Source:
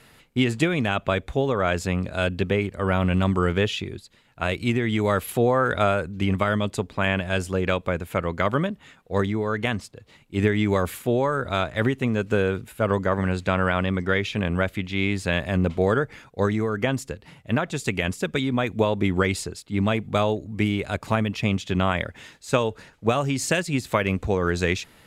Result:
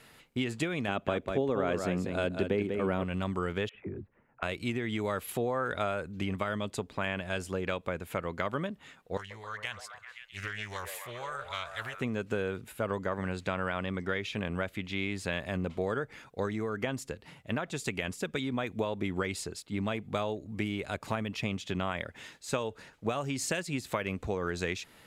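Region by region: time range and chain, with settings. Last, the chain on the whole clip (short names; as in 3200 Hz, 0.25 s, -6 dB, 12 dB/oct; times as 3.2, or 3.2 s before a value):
0.88–3.04 bell 300 Hz +9 dB 2.2 oct + echo 0.194 s -7 dB
3.69–4.43 Bessel low-pass 1200 Hz, order 8 + dispersion lows, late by 60 ms, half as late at 410 Hz
9.17–12.01 passive tone stack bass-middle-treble 10-0-10 + delay with a stepping band-pass 0.131 s, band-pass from 530 Hz, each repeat 0.7 oct, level -3 dB + Doppler distortion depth 0.42 ms
whole clip: low shelf 150 Hz -6 dB; compressor 2:1, threshold -30 dBFS; gain -3 dB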